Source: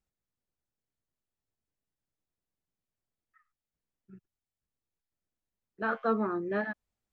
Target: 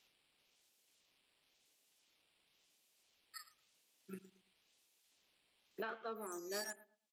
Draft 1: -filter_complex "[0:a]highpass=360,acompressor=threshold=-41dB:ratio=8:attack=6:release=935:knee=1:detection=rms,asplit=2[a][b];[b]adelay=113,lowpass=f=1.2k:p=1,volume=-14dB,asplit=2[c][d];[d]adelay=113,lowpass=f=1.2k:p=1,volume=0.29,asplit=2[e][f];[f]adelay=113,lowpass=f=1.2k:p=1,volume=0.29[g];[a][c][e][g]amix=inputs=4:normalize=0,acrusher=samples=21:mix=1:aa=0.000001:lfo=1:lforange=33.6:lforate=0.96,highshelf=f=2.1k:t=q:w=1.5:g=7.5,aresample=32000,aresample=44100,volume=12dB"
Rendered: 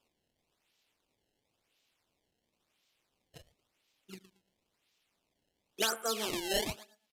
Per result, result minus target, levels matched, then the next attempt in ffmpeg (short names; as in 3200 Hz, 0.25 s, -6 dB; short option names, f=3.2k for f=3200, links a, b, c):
compressor: peak gain reduction -9.5 dB; decimation with a swept rate: distortion +14 dB
-filter_complex "[0:a]highpass=360,acompressor=threshold=-52dB:ratio=8:attack=6:release=935:knee=1:detection=rms,asplit=2[a][b];[b]adelay=113,lowpass=f=1.2k:p=1,volume=-14dB,asplit=2[c][d];[d]adelay=113,lowpass=f=1.2k:p=1,volume=0.29,asplit=2[e][f];[f]adelay=113,lowpass=f=1.2k:p=1,volume=0.29[g];[a][c][e][g]amix=inputs=4:normalize=0,acrusher=samples=21:mix=1:aa=0.000001:lfo=1:lforange=33.6:lforate=0.96,highshelf=f=2.1k:t=q:w=1.5:g=7.5,aresample=32000,aresample=44100,volume=12dB"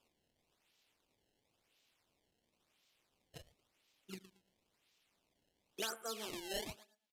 decimation with a swept rate: distortion +14 dB
-filter_complex "[0:a]highpass=360,acompressor=threshold=-52dB:ratio=8:attack=6:release=935:knee=1:detection=rms,asplit=2[a][b];[b]adelay=113,lowpass=f=1.2k:p=1,volume=-14dB,asplit=2[c][d];[d]adelay=113,lowpass=f=1.2k:p=1,volume=0.29,asplit=2[e][f];[f]adelay=113,lowpass=f=1.2k:p=1,volume=0.29[g];[a][c][e][g]amix=inputs=4:normalize=0,acrusher=samples=4:mix=1:aa=0.000001:lfo=1:lforange=6.4:lforate=0.96,highshelf=f=2.1k:t=q:w=1.5:g=7.5,aresample=32000,aresample=44100,volume=12dB"